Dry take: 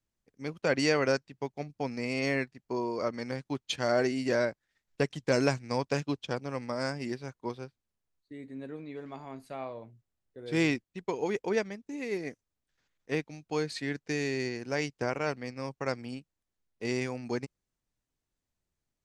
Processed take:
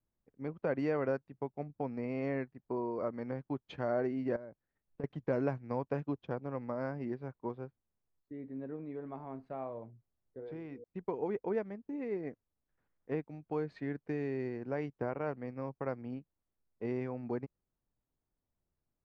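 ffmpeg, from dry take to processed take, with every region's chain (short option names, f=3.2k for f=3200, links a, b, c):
-filter_complex "[0:a]asettb=1/sr,asplit=3[a][b][c];[a]atrim=end=4.364[d];[b]atrim=start=4.36:end=5.04,asetpts=PTS-STARTPTS,afade=t=in:d=0.004:c=qsin,afade=t=out:st=0.676:d=0.004:c=qsin,acompressor=threshold=-38dB:ratio=6:attack=3.2:release=140:knee=1:detection=peak,equalizer=f=2.7k:w=0.32:g=-5.5[e];[c]atrim=start=5.036[f];[d][e]acrossfade=d=0.004:c1=hsin:c2=qsin[g];[g][f]acrossfade=d=0.004:c1=qsin:c2=hsin,asettb=1/sr,asplit=3[h][i][j];[h]atrim=end=10.394[k];[i]atrim=start=10.39:end=10.84,asetpts=PTS-STARTPTS,afade=t=in:d=0.004:c=qsin,afade=t=out:st=0.446:d=0.004:c=qsin,aeval=exprs='val(0)+0.00562*sin(2*PI*480*n/s)':c=same,acompressor=threshold=-39dB:ratio=10:attack=3.2:release=140:knee=1:detection=peak,bandreject=f=60:t=h:w=6,bandreject=f=120:t=h:w=6,bandreject=f=180:t=h:w=6,bandreject=f=240:t=h:w=6,bandreject=f=300:t=h:w=6,bandreject=f=360:t=h:w=6,bandreject=f=420:t=h:w=6[l];[j]atrim=start=10.836[m];[k][l]acrossfade=d=0.004:c1=hsin:c2=qsin[n];[n][m]acrossfade=d=0.004:c1=qsin:c2=hsin,lowpass=1.2k,acompressor=threshold=-38dB:ratio=1.5"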